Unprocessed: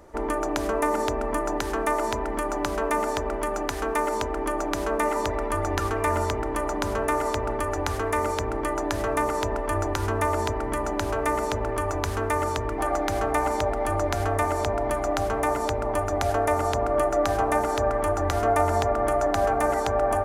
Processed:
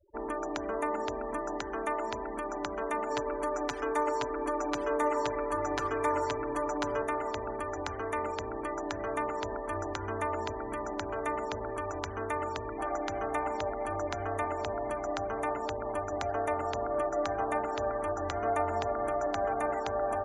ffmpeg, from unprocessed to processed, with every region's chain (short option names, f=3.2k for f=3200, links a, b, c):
-filter_complex "[0:a]asettb=1/sr,asplit=3[a][b][c];[a]atrim=end=3.104[d];[b]atrim=start=3.1:end=7.02,asetpts=PTS-STARTPTS,afade=t=in:d=0.004:c=qsin,afade=t=out:st=3.916:d=0.004:c=qsin,aecho=1:1:6.9:0.85,atrim=end_sample=172872,aecho=1:1:329:0.119,atrim=end_sample=172872[e];[c]atrim=start=7.016[f];[d][e]acrossfade=d=0.004:c1=hsin:c2=qsin[g];[g][f]acrossfade=d=0.004:c1=qsin:c2=hsin,afftfilt=real='re*gte(hypot(re,im),0.0178)':imag='im*gte(hypot(re,im),0.0178)':win_size=1024:overlap=0.75,lowpass=8.5k,lowshelf=f=100:g=-10,volume=-7.5dB"